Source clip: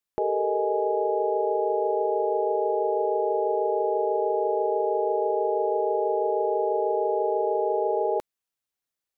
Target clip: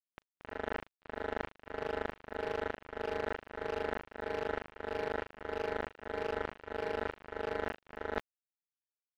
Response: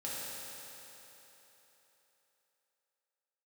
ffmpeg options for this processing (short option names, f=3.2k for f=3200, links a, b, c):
-filter_complex "[0:a]dynaudnorm=f=230:g=13:m=4dB,asplit=2[a][b];[b]adelay=75,lowpass=f=800:p=1,volume=-8dB,asplit=2[c][d];[d]adelay=75,lowpass=f=800:p=1,volume=0.42,asplit=2[e][f];[f]adelay=75,lowpass=f=800:p=1,volume=0.42,asplit=2[g][h];[h]adelay=75,lowpass=f=800:p=1,volume=0.42,asplit=2[i][j];[j]adelay=75,lowpass=f=800:p=1,volume=0.42[k];[c][e][g][i][k]amix=inputs=5:normalize=0[l];[a][l]amix=inputs=2:normalize=0,tremolo=f=1.6:d=0.59,acrusher=bits=2:mix=0:aa=0.5,asoftclip=type=hard:threshold=-12.5dB,areverse,acompressor=threshold=-38dB:ratio=8,areverse,volume=5dB"